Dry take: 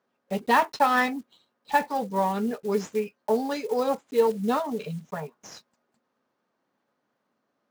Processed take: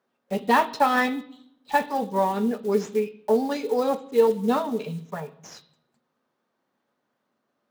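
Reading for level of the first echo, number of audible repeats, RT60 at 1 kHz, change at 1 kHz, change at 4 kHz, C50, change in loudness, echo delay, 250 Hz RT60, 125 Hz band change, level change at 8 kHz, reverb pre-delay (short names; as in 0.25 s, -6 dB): none, none, 0.70 s, +0.5 dB, +1.0 dB, 16.5 dB, +2.0 dB, none, 1.0 s, +1.0 dB, 0.0 dB, 3 ms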